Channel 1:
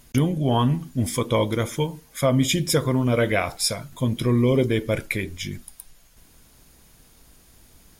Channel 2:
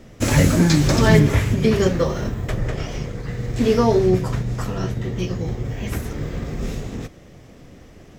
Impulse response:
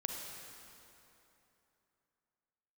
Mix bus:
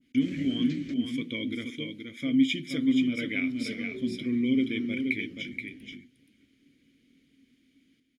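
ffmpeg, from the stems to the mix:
-filter_complex "[0:a]adynamicequalizer=threshold=0.02:dfrequency=1500:dqfactor=0.7:tfrequency=1500:tqfactor=0.7:attack=5:release=100:ratio=0.375:range=2:mode=boostabove:tftype=highshelf,volume=1.5dB,asplit=3[a][b][c];[b]volume=-6dB[d];[1:a]volume=-7.5dB,asplit=3[e][f][g];[e]atrim=end=0.94,asetpts=PTS-STARTPTS,afade=t=out:st=0.936:d=0.004:c=hsin[h];[f]atrim=start=0.94:end=3.43,asetpts=PTS-STARTPTS,volume=0[i];[g]atrim=start=3.43,asetpts=PTS-STARTPTS,afade=t=in:d=0.004:c=hsin[j];[h][i][j]concat=n=3:v=0:a=1,asplit=2[k][l];[l]volume=-19dB[m];[c]apad=whole_len=360791[n];[k][n]sidechaingate=range=-33dB:threshold=-45dB:ratio=16:detection=peak[o];[d][m]amix=inputs=2:normalize=0,aecho=0:1:477:1[p];[a][o][p]amix=inputs=3:normalize=0,asplit=3[q][r][s];[q]bandpass=f=270:t=q:w=8,volume=0dB[t];[r]bandpass=f=2.29k:t=q:w=8,volume=-6dB[u];[s]bandpass=f=3.01k:t=q:w=8,volume=-9dB[v];[t][u][v]amix=inputs=3:normalize=0"

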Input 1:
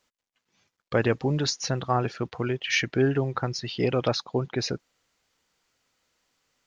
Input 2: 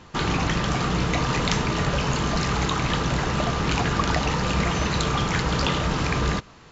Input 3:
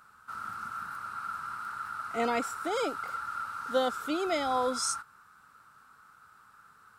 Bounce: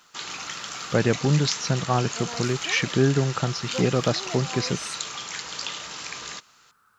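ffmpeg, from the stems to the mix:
-filter_complex "[0:a]equalizer=f=170:t=o:w=0.68:g=9,volume=0.5dB,asplit=2[a][b];[1:a]highpass=f=690:p=1,crystalizer=i=6:c=0,volume=-14dB[c];[2:a]acrusher=bits=10:mix=0:aa=0.000001,volume=-5.5dB[d];[b]apad=whole_len=308239[e];[d][e]sidechaincompress=threshold=-24dB:ratio=8:attack=9.4:release=336[f];[a][c][f]amix=inputs=3:normalize=0"

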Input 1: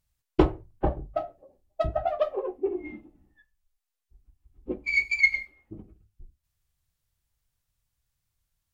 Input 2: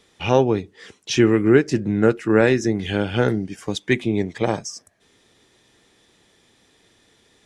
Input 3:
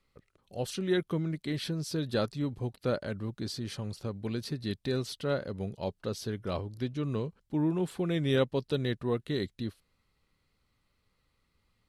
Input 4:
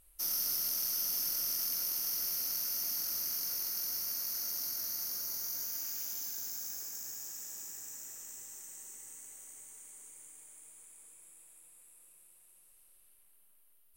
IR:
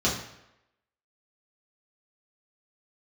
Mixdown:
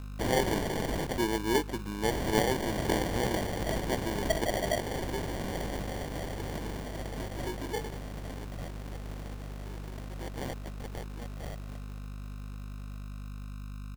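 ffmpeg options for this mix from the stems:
-filter_complex "[0:a]equalizer=f=670:t=o:w=0.77:g=8.5,flanger=delay=16.5:depth=6.7:speed=1.4,adelay=2500,volume=-10.5dB[a];[1:a]highpass=f=530:p=1,volume=-8.5dB[b];[2:a]highpass=1.5k,adelay=2100,volume=1dB[c];[3:a]acrusher=samples=30:mix=1:aa=0.000001,volume=2dB,asplit=3[d][e][f];[d]atrim=end=1.07,asetpts=PTS-STARTPTS,afade=t=out:st=1.066:d=0.004:c=hsin[g];[e]atrim=start=1.07:end=2.1,asetpts=PTS-STARTPTS,volume=0[h];[f]atrim=start=2.1,asetpts=PTS-STARTPTS,afade=t=in:d=0.004:c=hsin[i];[g][h][i]concat=n=3:v=0:a=1[j];[a][b][c][j]amix=inputs=4:normalize=0,bandreject=f=4.4k:w=7,aeval=exprs='val(0)+0.0112*(sin(2*PI*50*n/s)+sin(2*PI*2*50*n/s)/2+sin(2*PI*3*50*n/s)/3+sin(2*PI*4*50*n/s)/4+sin(2*PI*5*50*n/s)/5)':c=same,acrusher=samples=34:mix=1:aa=0.000001"

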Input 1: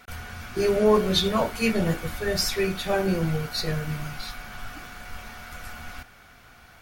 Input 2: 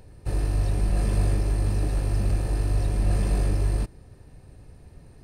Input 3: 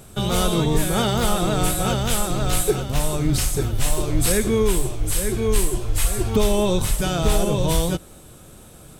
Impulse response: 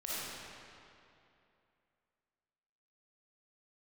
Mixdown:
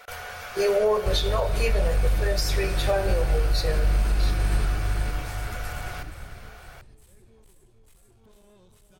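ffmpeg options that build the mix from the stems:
-filter_complex "[0:a]lowshelf=f=370:t=q:w=3:g=-10,volume=2dB,asplit=3[a][b][c];[b]volume=-17dB[d];[1:a]lowshelf=f=110:g=11.5,acompressor=threshold=-18dB:ratio=6,equalizer=f=2.9k:w=0.34:g=10,adelay=800,volume=1dB,asplit=2[e][f];[f]volume=-4dB[g];[2:a]asoftclip=type=tanh:threshold=-19.5dB,adelay=1900,volume=-19.5dB,asplit=2[h][i];[i]volume=-21.5dB[j];[c]apad=whole_len=480521[k];[h][k]sidechaingate=range=-13dB:threshold=-46dB:ratio=16:detection=peak[l];[3:a]atrim=start_sample=2205[m];[d][m]afir=irnorm=-1:irlink=0[n];[g][j]amix=inputs=2:normalize=0,aecho=0:1:456|912|1368|1824|2280:1|0.39|0.152|0.0593|0.0231[o];[a][e][l][n][o]amix=inputs=5:normalize=0,alimiter=limit=-13.5dB:level=0:latency=1:release=374"

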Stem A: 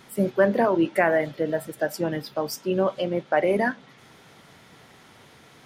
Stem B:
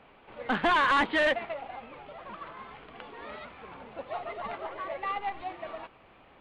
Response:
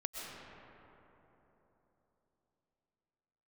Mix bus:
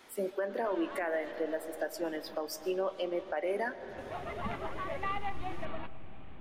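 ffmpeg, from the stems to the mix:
-filter_complex "[0:a]highpass=f=280:w=0.5412,highpass=f=280:w=1.3066,volume=-7.5dB,asplit=3[a][b][c];[b]volume=-12dB[d];[1:a]asubboost=boost=5.5:cutoff=240,volume=-1dB,afade=t=in:st=3.76:d=0.24:silence=0.334965,asplit=2[e][f];[f]volume=-17.5dB[g];[c]apad=whole_len=282378[h];[e][h]sidechaincompress=threshold=-40dB:ratio=8:attack=16:release=699[i];[2:a]atrim=start_sample=2205[j];[d][g]amix=inputs=2:normalize=0[k];[k][j]afir=irnorm=-1:irlink=0[l];[a][i][l]amix=inputs=3:normalize=0,alimiter=limit=-24dB:level=0:latency=1:release=264"

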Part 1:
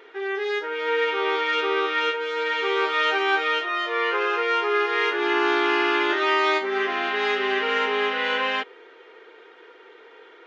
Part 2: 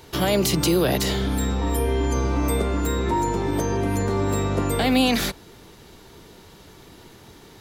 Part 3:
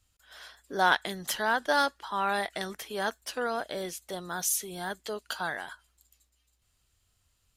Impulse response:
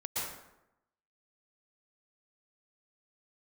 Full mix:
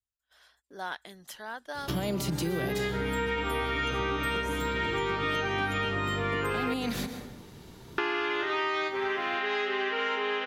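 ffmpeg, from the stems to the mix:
-filter_complex "[0:a]adelay=2300,volume=2.5dB,asplit=3[a][b][c];[a]atrim=end=6.74,asetpts=PTS-STARTPTS,afade=t=out:st=6.736:d=0.004:c=hsin[d];[b]atrim=start=6.74:end=7.98,asetpts=PTS-STARTPTS,volume=0[e];[c]atrim=start=7.98,asetpts=PTS-STARTPTS,afade=t=in:d=0.004:c=hsin[f];[d][e][f]concat=n=3:v=0:a=1,asplit=2[g][h];[h]volume=-15.5dB[i];[1:a]equalizer=f=140:w=0.71:g=7.5,adelay=1750,volume=-6dB,asplit=2[j][k];[k]volume=-15dB[l];[2:a]agate=range=-14dB:threshold=-56dB:ratio=16:detection=peak,volume=-12.5dB[m];[3:a]atrim=start_sample=2205[n];[i][l]amix=inputs=2:normalize=0[o];[o][n]afir=irnorm=-1:irlink=0[p];[g][j][m][p]amix=inputs=4:normalize=0,acompressor=threshold=-29dB:ratio=4"

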